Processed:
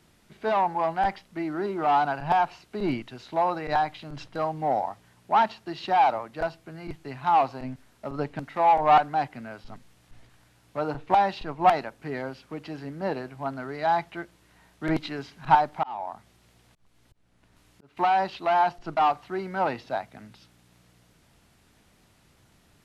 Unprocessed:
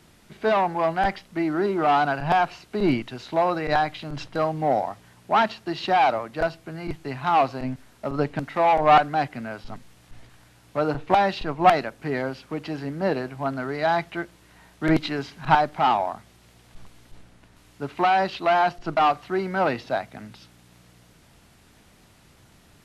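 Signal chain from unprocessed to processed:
dynamic equaliser 880 Hz, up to +8 dB, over −36 dBFS, Q 3.2
0:15.53–0:17.97: volume swells 434 ms
level −6 dB

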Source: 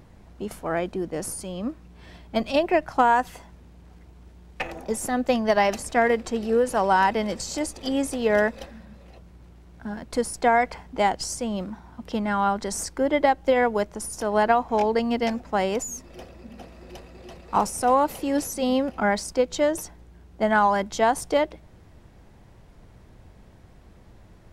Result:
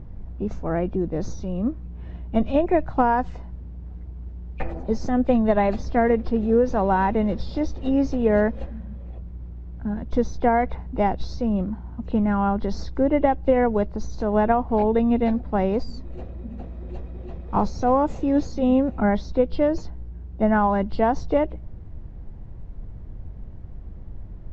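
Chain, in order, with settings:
hearing-aid frequency compression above 2,300 Hz 1.5 to 1
spectral tilt −4 dB per octave
level −2.5 dB

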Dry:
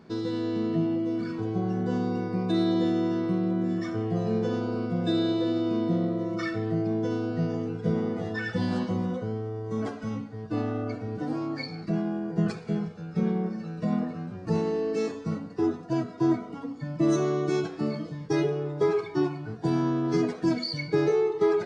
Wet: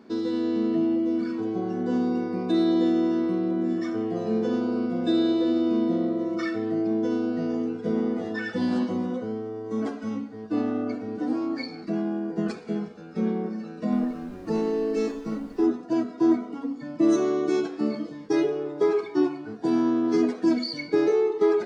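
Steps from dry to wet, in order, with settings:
0:13.91–0:15.64: background noise brown −43 dBFS
low shelf with overshoot 190 Hz −8 dB, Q 3

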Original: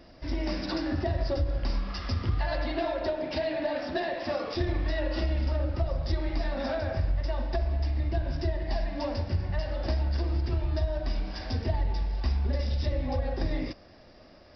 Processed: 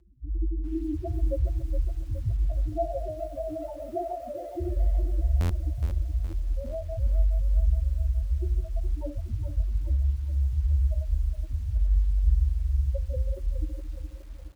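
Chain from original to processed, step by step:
low-pass filter 4,200 Hz 24 dB per octave
repeating echo 149 ms, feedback 46%, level −7.5 dB
spectral peaks only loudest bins 2
high-pass filter 50 Hz 24 dB per octave
low-shelf EQ 440 Hz −3.5 dB
comb filter 5.8 ms, depth 58%
hum removal 87.47 Hz, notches 38
rotating-speaker cabinet horn 6.7 Hz
low-shelf EQ 130 Hz +11.5 dB
buffer that repeats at 0:05.40, samples 512, times 8
feedback echo at a low word length 417 ms, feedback 55%, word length 9 bits, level −9.5 dB
level +3.5 dB

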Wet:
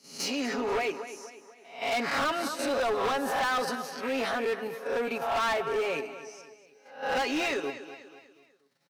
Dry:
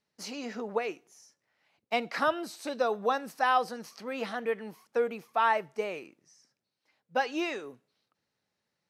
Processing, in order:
peak hold with a rise ahead of every peak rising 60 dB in 0.47 s
high-pass filter 150 Hz 24 dB per octave
comb filter 7.3 ms, depth 66%
in parallel at +2 dB: output level in coarse steps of 20 dB
on the sum: repeating echo 243 ms, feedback 44%, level −14 dB
gain into a clipping stage and back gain 25 dB

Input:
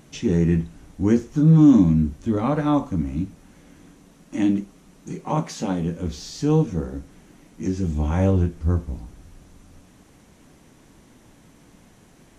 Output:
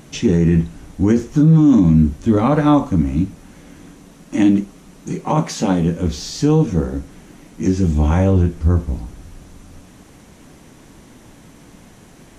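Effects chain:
brickwall limiter −13 dBFS, peak gain reduction 8 dB
level +8 dB

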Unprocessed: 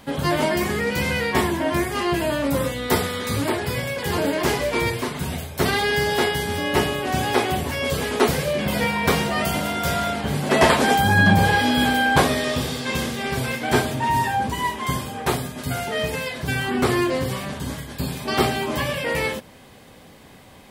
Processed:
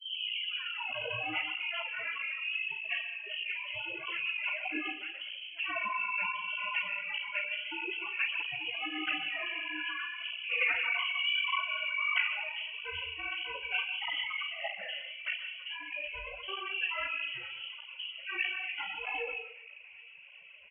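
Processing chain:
turntable start at the beginning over 0.89 s
formants moved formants +3 semitones
low-shelf EQ 150 Hz −6.5 dB
mains-hum notches 50/100/150/200/250/300/350 Hz
gate on every frequency bin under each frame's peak −10 dB strong
double-tracking delay 38 ms −9.5 dB
delay with a band-pass on its return 390 ms, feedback 81%, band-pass 450 Hz, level −16 dB
on a send at −9.5 dB: convolution reverb RT60 0.65 s, pre-delay 119 ms
on the sum: voice inversion scrambler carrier 3,100 Hz
through-zero flanger with one copy inverted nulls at 1.6 Hz, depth 6.5 ms
level −9 dB

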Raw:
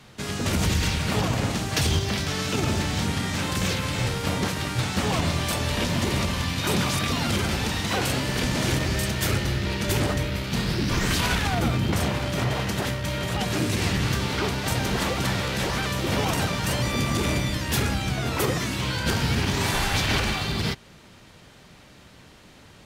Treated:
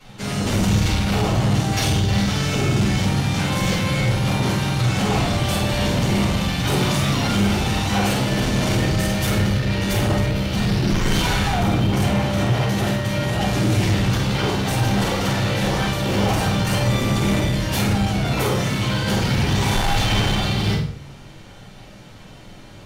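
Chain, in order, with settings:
rectangular room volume 260 cubic metres, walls furnished, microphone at 6.9 metres
soft clipping −7.5 dBFS, distortion −13 dB
flutter between parallel walls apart 8.5 metres, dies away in 0.41 s
level −7 dB

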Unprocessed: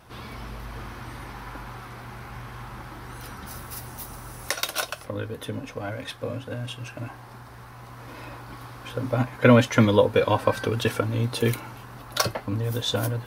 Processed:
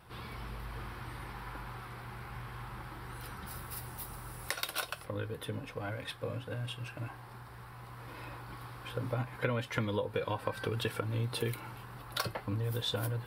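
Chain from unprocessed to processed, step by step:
thirty-one-band graphic EQ 160 Hz +3 dB, 250 Hz −8 dB, 630 Hz −5 dB, 6,300 Hz −11 dB
downward compressor 6 to 1, threshold −25 dBFS, peak gain reduction 12 dB
level −5 dB

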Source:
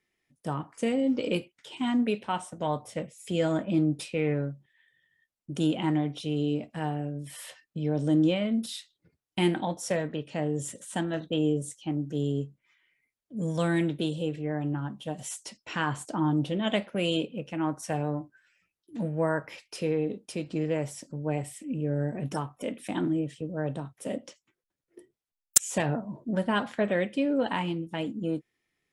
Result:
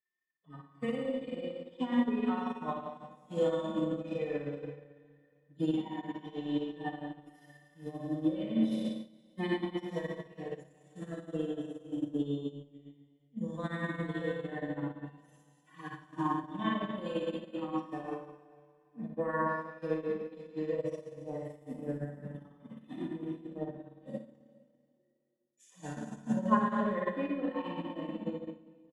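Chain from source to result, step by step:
harmonic-percussive split with one part muted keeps harmonic
high-pass filter 140 Hz 6 dB per octave
parametric band 8,700 Hz −9 dB 0.23 octaves
comb filter 4 ms, depth 31%
four-comb reverb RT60 2.3 s, combs from 28 ms, DRR −2.5 dB
brickwall limiter −21 dBFS, peak gain reduction 10.5 dB
hollow resonant body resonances 1,100/1,800/3,500 Hz, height 14 dB, ringing for 35 ms
transient designer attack +4 dB, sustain −10 dB
multi-tap delay 58/70/112/454 ms −6/−17/−13.5/−12 dB
expander for the loud parts 2.5 to 1, over −35 dBFS

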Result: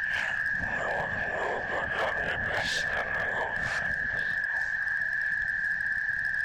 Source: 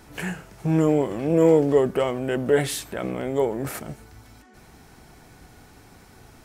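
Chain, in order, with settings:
peak hold with a rise ahead of every peak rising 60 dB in 0.40 s
steady tone 1,700 Hz −27 dBFS
low-pass filter 5,500 Hz 24 dB per octave
in parallel at 0 dB: downward compressor 10 to 1, threshold −26 dBFS, peak gain reduction 14.5 dB
on the sum: Chebyshev band-stop filter 110–660 Hz, order 3
echo through a band-pass that steps 383 ms, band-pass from 150 Hz, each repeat 1.4 octaves, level −5 dB
random phases in short frames
hard clipping −18 dBFS, distortion −24 dB
level −4.5 dB

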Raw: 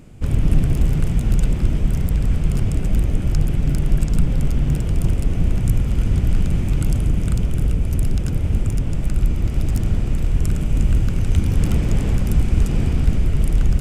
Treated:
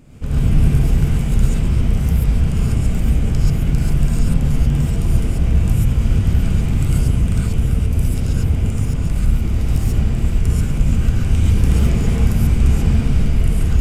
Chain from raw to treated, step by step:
reverb whose tail is shaped and stops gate 160 ms rising, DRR −6.5 dB
level −4 dB

